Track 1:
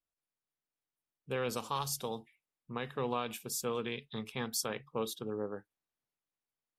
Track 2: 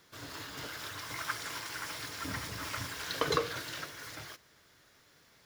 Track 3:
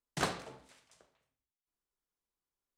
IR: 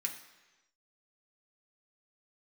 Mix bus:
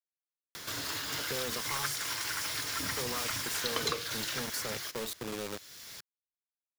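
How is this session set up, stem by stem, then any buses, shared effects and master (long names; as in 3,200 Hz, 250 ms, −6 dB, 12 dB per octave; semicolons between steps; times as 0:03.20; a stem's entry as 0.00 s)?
−9.5 dB, 0.00 s, muted 0:02.03–0:02.92, no send, log-companded quantiser 2 bits
−2.5 dB, 0.55 s, no send, high-shelf EQ 2,500 Hz +11.5 dB
muted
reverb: not used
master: multiband upward and downward compressor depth 70%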